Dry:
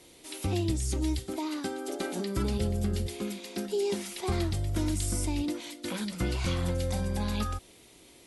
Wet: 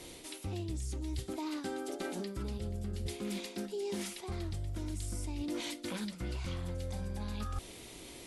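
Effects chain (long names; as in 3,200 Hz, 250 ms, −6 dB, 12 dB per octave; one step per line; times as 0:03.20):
low-shelf EQ 67 Hz +6 dB
reversed playback
downward compressor 12 to 1, threshold −41 dBFS, peak gain reduction 19 dB
reversed playback
highs frequency-modulated by the lows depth 0.12 ms
level +6 dB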